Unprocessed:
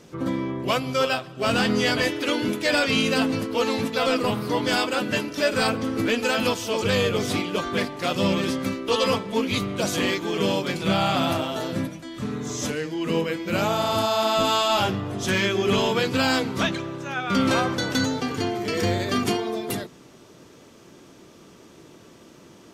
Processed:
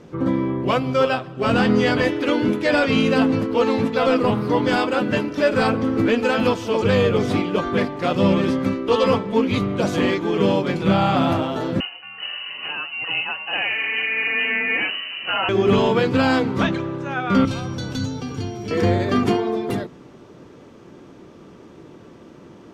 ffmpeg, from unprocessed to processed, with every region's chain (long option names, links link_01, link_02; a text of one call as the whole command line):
ffmpeg -i in.wav -filter_complex "[0:a]asettb=1/sr,asplit=3[link_01][link_02][link_03];[link_01]atrim=end=11.804[link_04];[link_02]atrim=start=11.8:end=15.49,asetpts=PTS-STARTPTS,afade=type=in:duration=0.004:curve=qsin,afade=type=out:start_time=3.686:duration=0.004:curve=qsin,lowpass=frequency=2600:width_type=q:width=0.5098,lowpass=frequency=2600:width_type=q:width=0.6013,lowpass=frequency=2600:width_type=q:width=0.9,lowpass=frequency=2600:width_type=q:width=2.563,afreqshift=-3100,highpass=frequency=130:width=0.5412,highpass=frequency=130:width=1.3066[link_05];[link_03]atrim=start=15.486[link_06];[link_04][link_05]acrossfade=duration=0.004:curve1=hsin:curve2=qsin[link_07];[link_07][link_06]acrossfade=duration=0.004:curve1=qsin:curve2=hsin,asettb=1/sr,asplit=3[link_08][link_09][link_10];[link_08]atrim=end=17.454[link_11];[link_09]atrim=start=17.45:end=18.71,asetpts=PTS-STARTPTS,afade=type=in:duration=0.004:curve=qsin,afade=type=out:start_time=1.256:duration=0.004:curve=qsin,bandreject=frequency=1900:width=7.7,acrossover=split=180|3000[link_12][link_13][link_14];[link_13]acompressor=threshold=-40dB:ratio=3:attack=3.2:release=140:knee=2.83:detection=peak[link_15];[link_12][link_15][link_14]amix=inputs=3:normalize=0,aeval=exprs='val(0)+0.00708*sin(2*PI*5700*n/s)':channel_layout=same[link_16];[link_10]atrim=start=18.706[link_17];[link_11][link_16]acrossfade=duration=0.004:curve1=hsin:curve2=qsin[link_18];[link_18][link_17]acrossfade=duration=0.004:curve1=qsin:curve2=hsin,lowpass=frequency=1300:poles=1,bandreject=frequency=650:width=19,volume=6dB" out.wav